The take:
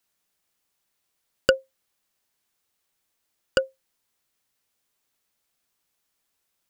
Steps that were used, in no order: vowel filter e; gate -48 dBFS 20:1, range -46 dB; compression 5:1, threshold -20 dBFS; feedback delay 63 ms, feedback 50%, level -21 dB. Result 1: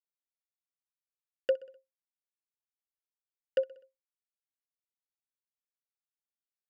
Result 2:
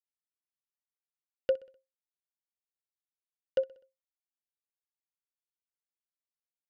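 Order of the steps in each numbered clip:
gate > feedback delay > compression > vowel filter; compression > vowel filter > gate > feedback delay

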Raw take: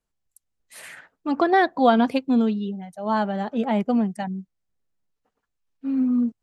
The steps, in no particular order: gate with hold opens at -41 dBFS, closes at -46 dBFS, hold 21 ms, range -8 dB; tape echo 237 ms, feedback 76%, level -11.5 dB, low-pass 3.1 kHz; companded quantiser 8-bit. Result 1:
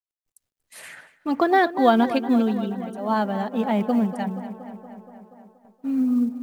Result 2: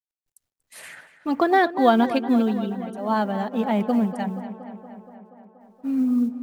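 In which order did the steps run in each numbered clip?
tape echo > gate with hold > companded quantiser; gate with hold > companded quantiser > tape echo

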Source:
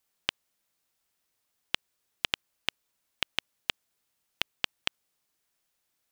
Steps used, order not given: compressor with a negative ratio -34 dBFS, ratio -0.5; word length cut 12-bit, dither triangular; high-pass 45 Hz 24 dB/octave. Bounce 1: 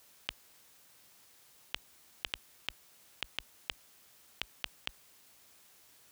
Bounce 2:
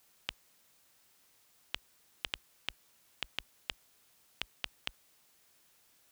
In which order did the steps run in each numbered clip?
word length cut > high-pass > compressor with a negative ratio; high-pass > compressor with a negative ratio > word length cut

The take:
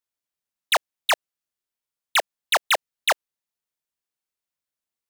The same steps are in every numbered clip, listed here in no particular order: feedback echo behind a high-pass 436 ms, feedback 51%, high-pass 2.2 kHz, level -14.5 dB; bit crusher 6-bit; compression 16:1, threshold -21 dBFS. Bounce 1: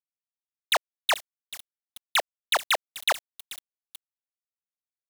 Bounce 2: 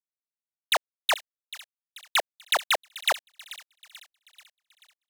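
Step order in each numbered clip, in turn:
compression > feedback echo behind a high-pass > bit crusher; bit crusher > compression > feedback echo behind a high-pass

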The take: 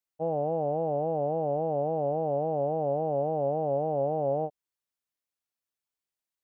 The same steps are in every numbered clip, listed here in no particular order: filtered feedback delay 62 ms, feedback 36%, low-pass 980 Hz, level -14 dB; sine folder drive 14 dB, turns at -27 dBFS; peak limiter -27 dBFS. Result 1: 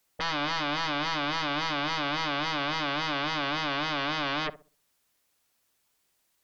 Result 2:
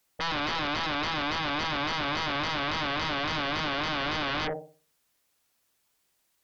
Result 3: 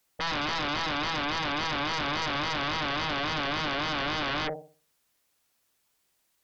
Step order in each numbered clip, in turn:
peak limiter > sine folder > filtered feedback delay; filtered feedback delay > peak limiter > sine folder; peak limiter > filtered feedback delay > sine folder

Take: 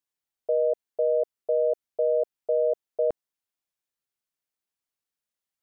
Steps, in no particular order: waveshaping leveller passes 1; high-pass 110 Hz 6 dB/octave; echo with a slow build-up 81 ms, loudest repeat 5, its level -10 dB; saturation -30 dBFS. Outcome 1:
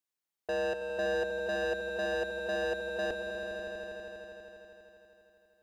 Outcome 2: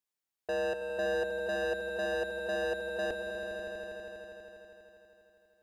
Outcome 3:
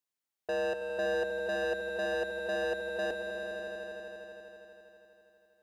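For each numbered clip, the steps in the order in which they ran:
high-pass > waveshaping leveller > saturation > echo with a slow build-up; high-pass > saturation > waveshaping leveller > echo with a slow build-up; saturation > high-pass > waveshaping leveller > echo with a slow build-up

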